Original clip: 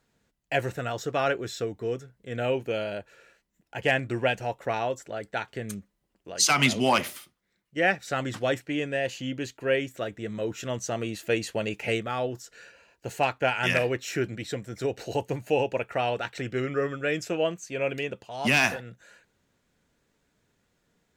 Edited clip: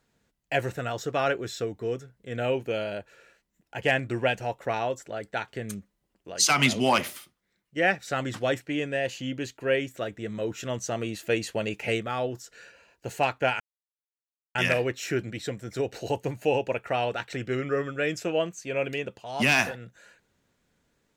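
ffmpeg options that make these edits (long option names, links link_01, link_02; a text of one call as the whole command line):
ffmpeg -i in.wav -filter_complex "[0:a]asplit=2[link_01][link_02];[link_01]atrim=end=13.6,asetpts=PTS-STARTPTS,afade=type=out:start_time=13.596:duration=0.004:curve=hsin,apad=pad_dur=0.95[link_03];[link_02]atrim=start=13.6,asetpts=PTS-STARTPTS,afade=type=in:duration=0.004:curve=hsin[link_04];[link_03][link_04]concat=n=2:v=0:a=1" out.wav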